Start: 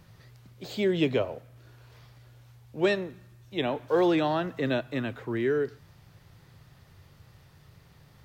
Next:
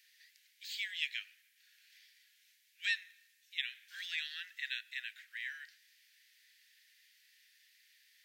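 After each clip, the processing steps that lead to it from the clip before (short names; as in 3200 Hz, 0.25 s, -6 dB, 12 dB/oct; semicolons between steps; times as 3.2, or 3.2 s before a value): steep high-pass 1700 Hz 72 dB/oct; gain -1 dB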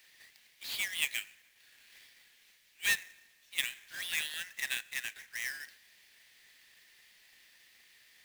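half-waves squared off; gain +1.5 dB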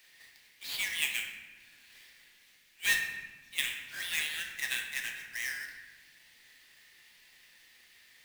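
reverb RT60 1.4 s, pre-delay 7 ms, DRR 1.5 dB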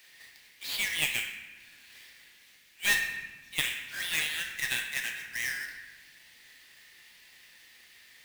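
one diode to ground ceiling -25 dBFS; gain +4 dB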